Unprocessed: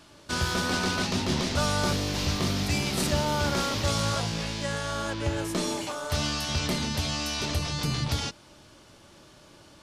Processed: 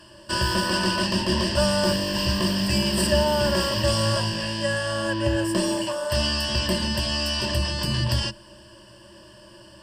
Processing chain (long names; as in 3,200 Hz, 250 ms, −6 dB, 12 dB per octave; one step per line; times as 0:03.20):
EQ curve with evenly spaced ripples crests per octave 1.3, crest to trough 17 dB
level +1 dB